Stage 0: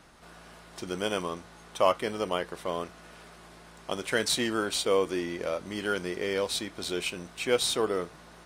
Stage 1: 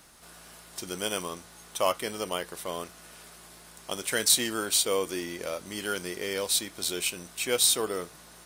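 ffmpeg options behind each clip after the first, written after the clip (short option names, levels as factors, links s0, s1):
-af "aemphasis=mode=production:type=75fm,volume=0.75"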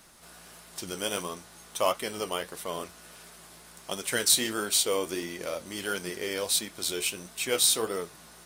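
-af "flanger=delay=4.4:depth=9.4:regen=58:speed=1.5:shape=sinusoidal,volume=1.58"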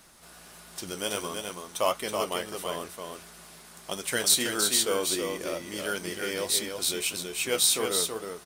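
-af "aecho=1:1:326:0.562"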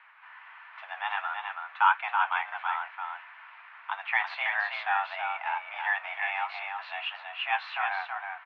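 -af "highpass=f=590:t=q:w=0.5412,highpass=f=590:t=q:w=1.307,lowpass=f=2300:t=q:w=0.5176,lowpass=f=2300:t=q:w=0.7071,lowpass=f=2300:t=q:w=1.932,afreqshift=300,volume=2"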